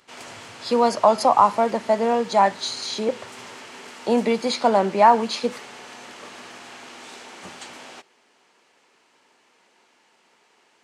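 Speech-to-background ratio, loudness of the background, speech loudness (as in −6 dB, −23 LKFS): 19.5 dB, −39.5 LKFS, −20.0 LKFS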